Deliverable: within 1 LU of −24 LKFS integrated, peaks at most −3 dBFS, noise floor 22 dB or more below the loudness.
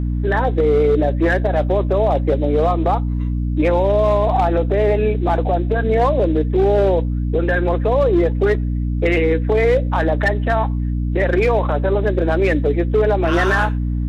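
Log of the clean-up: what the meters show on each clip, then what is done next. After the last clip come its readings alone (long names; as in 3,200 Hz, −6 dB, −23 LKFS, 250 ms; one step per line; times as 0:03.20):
mains hum 60 Hz; hum harmonics up to 300 Hz; level of the hum −17 dBFS; integrated loudness −17.5 LKFS; sample peak −6.0 dBFS; target loudness −24.0 LKFS
→ hum removal 60 Hz, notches 5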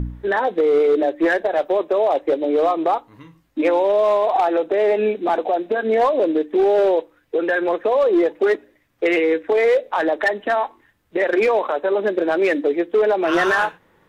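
mains hum none found; integrated loudness −19.0 LKFS; sample peak −9.0 dBFS; target loudness −24.0 LKFS
→ level −5 dB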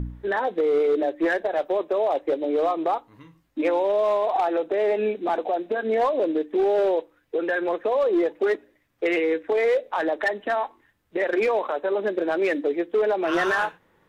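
integrated loudness −24.0 LKFS; sample peak −14.0 dBFS; background noise floor −65 dBFS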